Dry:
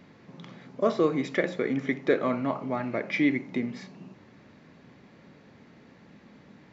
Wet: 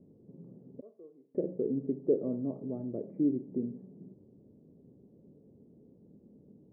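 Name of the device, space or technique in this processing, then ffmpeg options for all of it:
under water: -filter_complex "[0:a]lowpass=f=480:w=0.5412,lowpass=f=480:w=1.3066,equalizer=f=420:t=o:w=0.39:g=4.5,asettb=1/sr,asplit=3[a][b][c];[a]atrim=end=0.814[d];[b]atrim=start=0.81:end=1.35,asetpts=PTS-STARTPTS,afade=t=in:d=0.004:c=qsin,afade=t=out:st=0.536:d=0.004:c=qsin,aderivative[e];[c]atrim=start=1.346[f];[d][e]acrossfade=d=0.004:c1=hsin:c2=qsin[g];[g][f]acrossfade=d=0.004:c1=qsin:c2=hsin,volume=-4.5dB"

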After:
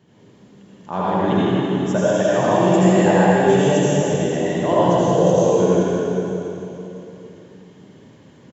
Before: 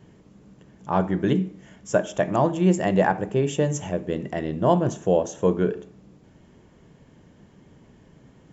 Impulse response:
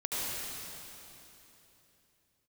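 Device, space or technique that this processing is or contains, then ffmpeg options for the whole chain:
PA in a hall: -filter_complex "[0:a]highpass=130,equalizer=f=3.8k:t=o:w=0.71:g=5,aecho=1:1:161:0.398[a];[1:a]atrim=start_sample=2205[b];[a][b]afir=irnorm=-1:irlink=0,volume=-1dB"

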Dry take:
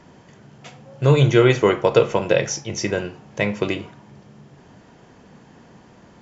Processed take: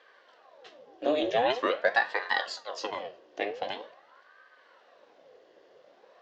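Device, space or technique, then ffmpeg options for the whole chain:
voice changer toy: -af "aeval=exprs='val(0)*sin(2*PI*780*n/s+780*0.8/0.45*sin(2*PI*0.45*n/s))':c=same,highpass=510,equalizer=f=520:t=q:w=4:g=8,equalizer=f=890:t=q:w=4:g=-8,equalizer=f=1.3k:t=q:w=4:g=-9,equalizer=f=2.3k:t=q:w=4:g=-8,lowpass=f=4.8k:w=0.5412,lowpass=f=4.8k:w=1.3066,volume=-3.5dB"

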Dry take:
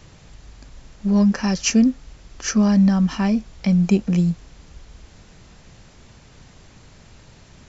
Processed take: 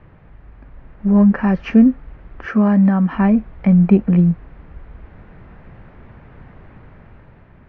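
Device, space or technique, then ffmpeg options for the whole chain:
action camera in a waterproof case: -filter_complex "[0:a]asettb=1/sr,asplit=3[a][b][c];[a]atrim=end=2.454[d];[b]atrim=start=2.45:end=3.15,asetpts=PTS-STARTPTS,afade=t=in:d=0.004:c=qsin,afade=t=out:st=0.696:d=0.004:c=qsin,highpass=f=220:p=1[e];[c]atrim=start=3.146[f];[d][e]acrossfade=d=0.004:c1=hsin:c2=qsin[g];[g][f]acrossfade=d=0.004:c1=qsin:c2=hsin,lowpass=f=2k:w=0.5412,lowpass=f=2k:w=1.3066,dynaudnorm=f=260:g=7:m=5.5dB,volume=1dB" -ar 22050 -c:a aac -b:a 48k

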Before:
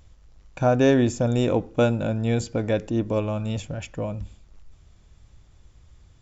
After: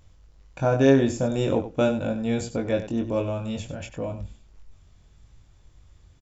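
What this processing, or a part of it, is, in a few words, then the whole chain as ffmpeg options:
slapback doubling: -filter_complex "[0:a]asplit=3[a][b][c];[b]adelay=22,volume=-4dB[d];[c]adelay=96,volume=-11dB[e];[a][d][e]amix=inputs=3:normalize=0,volume=-3dB"

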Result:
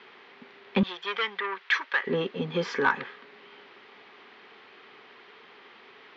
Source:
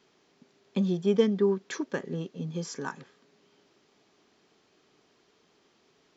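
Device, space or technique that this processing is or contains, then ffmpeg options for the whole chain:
overdrive pedal into a guitar cabinet: -filter_complex "[0:a]asplit=2[a][b];[b]highpass=f=720:p=1,volume=23dB,asoftclip=type=tanh:threshold=-11dB[c];[a][c]amix=inputs=2:normalize=0,lowpass=f=3k:p=1,volume=-6dB,highpass=80,equalizer=f=160:t=q:w=4:g=-8,equalizer=f=310:t=q:w=4:g=-8,equalizer=f=630:t=q:w=4:g=-8,equalizer=f=2k:t=q:w=4:g=4,lowpass=f=3.6k:w=0.5412,lowpass=f=3.6k:w=1.3066,asettb=1/sr,asplit=3[d][e][f];[d]atrim=end=0.834[g];[e]atrim=start=0.83:end=2.07,asetpts=PTS-STARTPTS,afade=t=in:d=0.004:c=qsin,afade=t=out:st=1.236:d=0.004:c=qsin,highpass=1.2k[h];[f]atrim=start=2.066[i];[g][h]acrossfade=d=0.004:c1=hsin:c2=qsin[j];[j][i]acrossfade=d=0.004:c1=qsin:c2=hsin,volume=2.5dB"

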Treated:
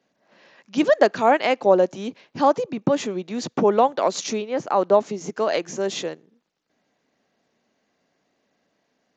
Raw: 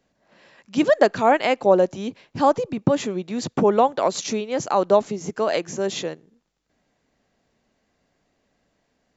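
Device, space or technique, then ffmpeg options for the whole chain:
Bluetooth headset: -filter_complex "[0:a]asettb=1/sr,asplit=3[a][b][c];[a]atrim=end=4.424[d];[b]atrim=start=4.42:end=5.05,asetpts=PTS-STARTPTS,afade=t=in:d=0.004:c=qsin,afade=t=out:st=0.626:d=0.004:c=qsin,acrossover=split=2600[e][f];[f]acompressor=threshold=-46dB:ratio=4:attack=1:release=60[g];[e][g]amix=inputs=2:normalize=0[h];[c]atrim=start=5.046[i];[d][h]acrossfade=d=0.004:c1=hsin:c2=qsin[j];[j][i]acrossfade=d=0.004:c1=qsin:c2=hsin,highpass=180,aresample=16000,aresample=44100" -ar 16000 -c:a sbc -b:a 64k

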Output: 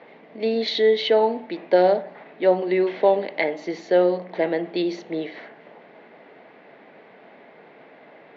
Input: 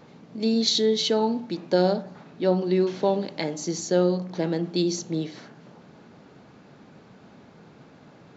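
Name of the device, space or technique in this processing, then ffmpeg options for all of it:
phone earpiece: -af "highpass=380,equalizer=f=450:t=q:w=4:g=3,equalizer=f=660:t=q:w=4:g=6,equalizer=f=1.3k:t=q:w=4:g=-5,equalizer=f=2k:t=q:w=4:g=10,lowpass=f=3.3k:w=0.5412,lowpass=f=3.3k:w=1.3066,volume=4dB"

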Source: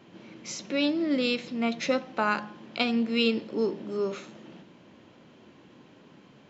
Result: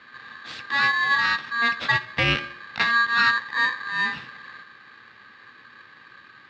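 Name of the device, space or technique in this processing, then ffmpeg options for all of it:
ring modulator pedal into a guitar cabinet: -af "aeval=exprs='val(0)*sgn(sin(2*PI*1400*n/s))':c=same,highpass=94,equalizer=f=120:t=q:w=4:g=5,equalizer=f=230:t=q:w=4:g=7,equalizer=f=390:t=q:w=4:g=-4,equalizer=f=680:t=q:w=4:g=-10,equalizer=f=960:t=q:w=4:g=-8,equalizer=f=1.5k:t=q:w=4:g=4,lowpass=f=3.8k:w=0.5412,lowpass=f=3.8k:w=1.3066,volume=6dB"

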